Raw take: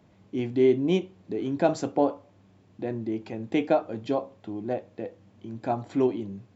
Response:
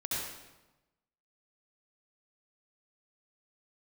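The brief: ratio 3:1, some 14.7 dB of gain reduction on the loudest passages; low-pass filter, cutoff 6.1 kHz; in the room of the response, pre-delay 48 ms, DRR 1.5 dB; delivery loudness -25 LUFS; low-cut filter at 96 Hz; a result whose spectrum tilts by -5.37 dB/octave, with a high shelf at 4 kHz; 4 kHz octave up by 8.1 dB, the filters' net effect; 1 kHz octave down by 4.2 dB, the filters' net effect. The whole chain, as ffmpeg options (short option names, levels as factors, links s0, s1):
-filter_complex "[0:a]highpass=96,lowpass=6100,equalizer=f=1000:t=o:g=-7.5,highshelf=f=4000:g=5.5,equalizer=f=4000:t=o:g=9,acompressor=threshold=0.0141:ratio=3,asplit=2[s0][s1];[1:a]atrim=start_sample=2205,adelay=48[s2];[s1][s2]afir=irnorm=-1:irlink=0,volume=0.501[s3];[s0][s3]amix=inputs=2:normalize=0,volume=3.98"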